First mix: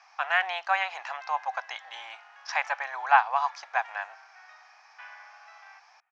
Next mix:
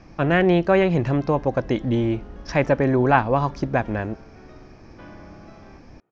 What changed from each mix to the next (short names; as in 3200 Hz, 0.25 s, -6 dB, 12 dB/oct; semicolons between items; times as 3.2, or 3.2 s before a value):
background: add band shelf 2100 Hz -8 dB 1 oct; master: remove Chebyshev high-pass 760 Hz, order 5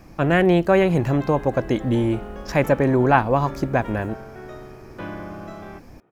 background +10.0 dB; master: remove Chebyshev low-pass 5900 Hz, order 4